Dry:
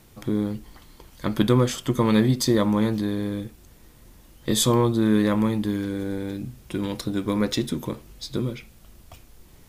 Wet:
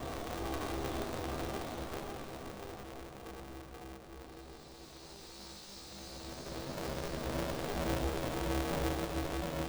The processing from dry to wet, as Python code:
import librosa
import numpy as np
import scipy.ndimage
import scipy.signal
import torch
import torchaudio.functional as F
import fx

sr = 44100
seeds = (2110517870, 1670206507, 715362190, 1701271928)

y = scipy.signal.medfilt(x, 25)
y = fx.bass_treble(y, sr, bass_db=-13, treble_db=14)
y = fx.doubler(y, sr, ms=14.0, db=-3)
y = fx.room_shoebox(y, sr, seeds[0], volume_m3=370.0, walls='mixed', distance_m=0.5)
y = fx.paulstretch(y, sr, seeds[1], factor=14.0, window_s=0.25, from_s=7.84)
y = fx.peak_eq(y, sr, hz=13000.0, db=-14.5, octaves=1.1)
y = fx.comb_fb(y, sr, f0_hz=66.0, decay_s=0.37, harmonics='all', damping=0.0, mix_pct=90)
y = fx.echo_feedback(y, sr, ms=533, feedback_pct=53, wet_db=-8.0)
y = fx.vibrato(y, sr, rate_hz=3.0, depth_cents=47.0)
y = y * np.sign(np.sin(2.0 * np.pi * 200.0 * np.arange(len(y)) / sr))
y = y * librosa.db_to_amplitude(1.5)